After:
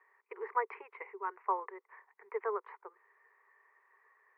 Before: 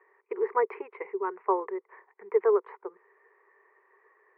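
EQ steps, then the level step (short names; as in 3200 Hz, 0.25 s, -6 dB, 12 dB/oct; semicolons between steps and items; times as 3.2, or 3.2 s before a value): HPF 820 Hz 12 dB/oct; -2.5 dB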